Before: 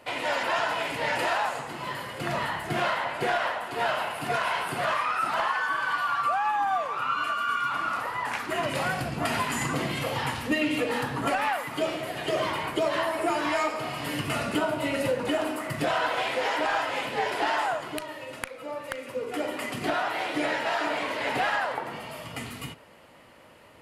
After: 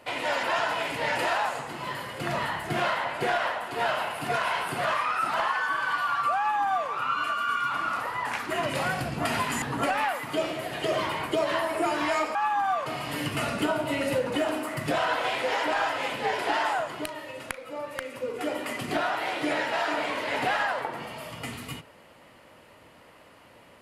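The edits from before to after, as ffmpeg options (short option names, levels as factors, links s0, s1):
-filter_complex "[0:a]asplit=4[s0][s1][s2][s3];[s0]atrim=end=9.622[s4];[s1]atrim=start=11.058:end=13.792[s5];[s2]atrim=start=6.378:end=6.892[s6];[s3]atrim=start=13.788[s7];[s4][s5]acrossfade=d=0.004:c1=hsin:c2=hsin[s8];[s8][s6]acrossfade=d=0.004:c1=hsin:c2=hsin[s9];[s9][s7]acrossfade=d=0.004:c1=hsin:c2=hsin"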